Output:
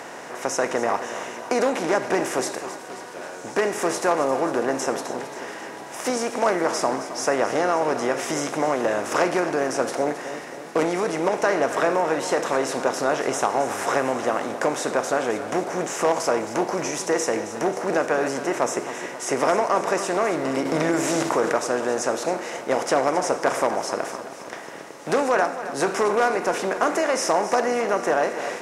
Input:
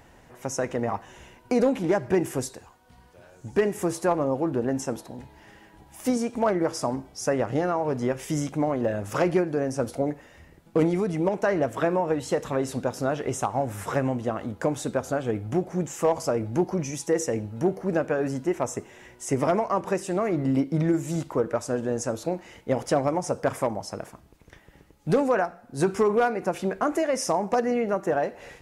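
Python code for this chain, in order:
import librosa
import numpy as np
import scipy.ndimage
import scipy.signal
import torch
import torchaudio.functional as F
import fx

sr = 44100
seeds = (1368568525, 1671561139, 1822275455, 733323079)

p1 = fx.bin_compress(x, sr, power=0.6)
p2 = fx.weighting(p1, sr, curve='A')
p3 = 10.0 ** (-16.5 / 20.0) * np.tanh(p2 / 10.0 ** (-16.5 / 20.0))
p4 = p2 + (p3 * librosa.db_to_amplitude(-11.5))
p5 = fx.echo_feedback(p4, sr, ms=268, feedback_pct=59, wet_db=-12.5)
y = fx.env_flatten(p5, sr, amount_pct=50, at=(20.65, 21.57))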